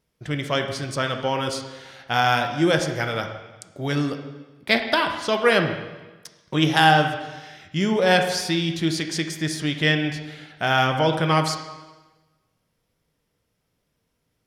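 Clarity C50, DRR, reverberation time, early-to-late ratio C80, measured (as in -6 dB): 7.5 dB, 4.5 dB, 1.2 s, 9.0 dB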